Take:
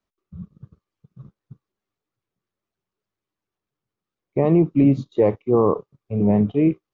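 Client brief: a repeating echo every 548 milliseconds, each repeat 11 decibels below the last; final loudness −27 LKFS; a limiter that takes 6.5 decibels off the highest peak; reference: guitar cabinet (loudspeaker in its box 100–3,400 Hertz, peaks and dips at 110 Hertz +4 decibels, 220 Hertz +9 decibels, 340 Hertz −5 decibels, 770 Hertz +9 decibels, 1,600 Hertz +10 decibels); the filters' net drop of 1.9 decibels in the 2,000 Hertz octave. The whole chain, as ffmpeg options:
ffmpeg -i in.wav -af "equalizer=frequency=2000:width_type=o:gain=-5.5,alimiter=limit=-13.5dB:level=0:latency=1,highpass=100,equalizer=frequency=110:width_type=q:width=4:gain=4,equalizer=frequency=220:width_type=q:width=4:gain=9,equalizer=frequency=340:width_type=q:width=4:gain=-5,equalizer=frequency=770:width_type=q:width=4:gain=9,equalizer=frequency=1600:width_type=q:width=4:gain=10,lowpass=frequency=3400:width=0.5412,lowpass=frequency=3400:width=1.3066,aecho=1:1:548|1096|1644:0.282|0.0789|0.0221,volume=-6dB" out.wav

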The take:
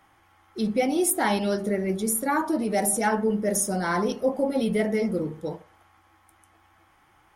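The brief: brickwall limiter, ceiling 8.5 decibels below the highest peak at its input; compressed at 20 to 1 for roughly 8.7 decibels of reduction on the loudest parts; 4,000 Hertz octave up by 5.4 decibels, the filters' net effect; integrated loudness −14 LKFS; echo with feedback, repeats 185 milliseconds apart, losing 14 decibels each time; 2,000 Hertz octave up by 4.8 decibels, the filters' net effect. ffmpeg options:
ffmpeg -i in.wav -af "equalizer=frequency=2000:width_type=o:gain=5,equalizer=frequency=4000:width_type=o:gain=5.5,acompressor=threshold=-26dB:ratio=20,alimiter=level_in=1dB:limit=-24dB:level=0:latency=1,volume=-1dB,aecho=1:1:185|370:0.2|0.0399,volume=19.5dB" out.wav

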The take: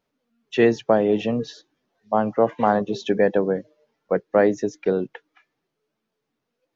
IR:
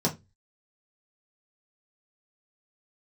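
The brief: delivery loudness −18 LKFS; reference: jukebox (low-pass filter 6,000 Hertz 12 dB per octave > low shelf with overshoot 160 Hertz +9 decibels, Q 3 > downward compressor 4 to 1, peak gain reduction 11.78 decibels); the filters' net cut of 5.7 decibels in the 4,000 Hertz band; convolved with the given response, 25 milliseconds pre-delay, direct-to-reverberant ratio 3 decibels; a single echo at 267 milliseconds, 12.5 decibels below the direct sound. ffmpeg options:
-filter_complex "[0:a]equalizer=frequency=4000:width_type=o:gain=-7,aecho=1:1:267:0.237,asplit=2[link_01][link_02];[1:a]atrim=start_sample=2205,adelay=25[link_03];[link_02][link_03]afir=irnorm=-1:irlink=0,volume=-12.5dB[link_04];[link_01][link_04]amix=inputs=2:normalize=0,lowpass=6000,lowshelf=frequency=160:width_type=q:width=3:gain=9,acompressor=threshold=-20dB:ratio=4,volume=7dB"

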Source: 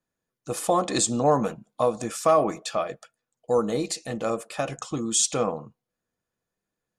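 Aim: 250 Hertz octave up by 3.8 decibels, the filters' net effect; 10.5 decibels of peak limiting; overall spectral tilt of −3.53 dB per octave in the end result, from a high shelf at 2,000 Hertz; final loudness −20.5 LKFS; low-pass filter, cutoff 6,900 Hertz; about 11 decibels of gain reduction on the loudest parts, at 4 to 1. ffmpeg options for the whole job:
ffmpeg -i in.wav -af "lowpass=6900,equalizer=frequency=250:width_type=o:gain=4.5,highshelf=frequency=2000:gain=8.5,acompressor=threshold=-27dB:ratio=4,volume=13.5dB,alimiter=limit=-10dB:level=0:latency=1" out.wav

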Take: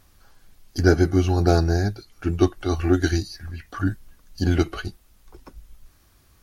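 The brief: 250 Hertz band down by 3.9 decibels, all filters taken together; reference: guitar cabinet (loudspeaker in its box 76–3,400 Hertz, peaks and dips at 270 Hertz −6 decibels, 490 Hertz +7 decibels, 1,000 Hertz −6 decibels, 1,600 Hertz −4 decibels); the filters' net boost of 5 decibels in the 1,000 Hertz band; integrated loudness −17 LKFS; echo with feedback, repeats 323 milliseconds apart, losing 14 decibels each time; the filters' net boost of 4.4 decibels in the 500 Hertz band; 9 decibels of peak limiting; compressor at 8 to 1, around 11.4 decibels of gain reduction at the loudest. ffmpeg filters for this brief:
ffmpeg -i in.wav -af "equalizer=frequency=250:width_type=o:gain=-9,equalizer=frequency=500:width_type=o:gain=6.5,equalizer=frequency=1000:width_type=o:gain=7,acompressor=threshold=-21dB:ratio=8,alimiter=limit=-20dB:level=0:latency=1,highpass=76,equalizer=frequency=270:width_type=q:width=4:gain=-6,equalizer=frequency=490:width_type=q:width=4:gain=7,equalizer=frequency=1000:width_type=q:width=4:gain=-6,equalizer=frequency=1600:width_type=q:width=4:gain=-4,lowpass=frequency=3400:width=0.5412,lowpass=frequency=3400:width=1.3066,aecho=1:1:323|646:0.2|0.0399,volume=16dB" out.wav

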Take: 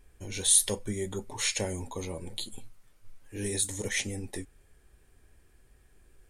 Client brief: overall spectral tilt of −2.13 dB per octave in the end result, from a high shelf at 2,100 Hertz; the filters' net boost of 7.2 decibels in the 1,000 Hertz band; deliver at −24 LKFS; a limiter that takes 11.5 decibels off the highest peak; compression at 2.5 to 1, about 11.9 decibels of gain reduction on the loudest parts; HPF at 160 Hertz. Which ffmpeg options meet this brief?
ffmpeg -i in.wav -af "highpass=160,equalizer=frequency=1000:width_type=o:gain=7.5,highshelf=frequency=2100:gain=5.5,acompressor=threshold=-30dB:ratio=2.5,volume=12dB,alimiter=limit=-12.5dB:level=0:latency=1" out.wav

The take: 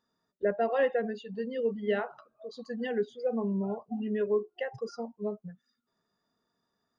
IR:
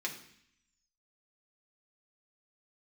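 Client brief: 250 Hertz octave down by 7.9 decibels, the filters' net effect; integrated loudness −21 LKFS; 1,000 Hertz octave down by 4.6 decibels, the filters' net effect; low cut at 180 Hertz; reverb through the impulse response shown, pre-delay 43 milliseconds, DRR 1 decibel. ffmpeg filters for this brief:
-filter_complex "[0:a]highpass=180,equalizer=frequency=250:width_type=o:gain=-7.5,equalizer=frequency=1000:width_type=o:gain=-7,asplit=2[link_01][link_02];[1:a]atrim=start_sample=2205,adelay=43[link_03];[link_02][link_03]afir=irnorm=-1:irlink=0,volume=-4dB[link_04];[link_01][link_04]amix=inputs=2:normalize=0,volume=13.5dB"

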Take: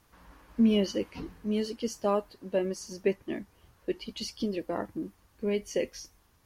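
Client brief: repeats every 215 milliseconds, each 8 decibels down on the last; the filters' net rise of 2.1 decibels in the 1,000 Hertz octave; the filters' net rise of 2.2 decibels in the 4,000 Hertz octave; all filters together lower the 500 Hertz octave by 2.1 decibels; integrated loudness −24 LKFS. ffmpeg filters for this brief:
ffmpeg -i in.wav -af "equalizer=frequency=500:width_type=o:gain=-3.5,equalizer=frequency=1000:width_type=o:gain=3.5,equalizer=frequency=4000:width_type=o:gain=3,aecho=1:1:215|430|645|860|1075:0.398|0.159|0.0637|0.0255|0.0102,volume=8dB" out.wav

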